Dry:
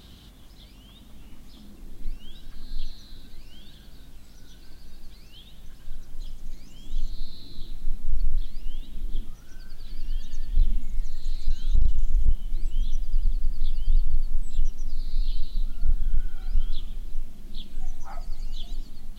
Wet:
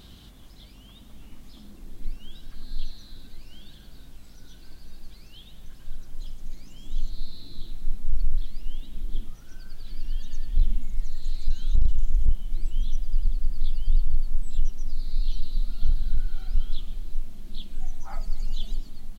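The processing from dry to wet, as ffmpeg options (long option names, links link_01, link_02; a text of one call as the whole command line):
ffmpeg -i in.wav -filter_complex "[0:a]asplit=2[link_01][link_02];[link_02]afade=type=in:start_time=14.73:duration=0.01,afade=type=out:start_time=15.67:duration=0.01,aecho=0:1:530|1060|1590|2120|2650|3180:0.473151|0.236576|0.118288|0.0591439|0.029572|0.014786[link_03];[link_01][link_03]amix=inputs=2:normalize=0,asettb=1/sr,asplit=3[link_04][link_05][link_06];[link_04]atrim=end=18.124[link_07];[link_05]atrim=start=18.12:end=18.78,asetpts=PTS-STARTPTS,afade=type=in:duration=0.004:curve=qsin,afade=type=out:start_time=0.656:duration=0.004:curve=qsin,aecho=1:1:4.9:0.65,atrim=end_sample=29106[link_08];[link_06]atrim=start=18.776[link_09];[link_07][link_08]acrossfade=duration=0.004:curve1=hsin:curve2=qsin[link_10];[link_10][link_09]acrossfade=duration=0.004:curve1=qsin:curve2=hsin" out.wav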